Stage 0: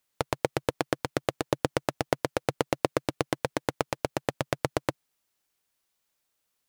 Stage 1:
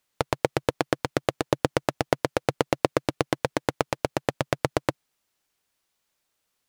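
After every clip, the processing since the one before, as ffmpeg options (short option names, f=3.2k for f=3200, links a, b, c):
-af "highshelf=f=9.6k:g=-5.5,volume=3.5dB"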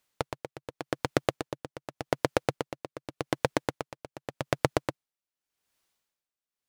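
-af "aeval=exprs='val(0)*pow(10,-19*(0.5-0.5*cos(2*PI*0.86*n/s))/20)':c=same"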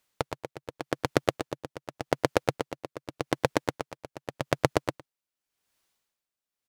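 -af "aecho=1:1:109:0.112,volume=1.5dB"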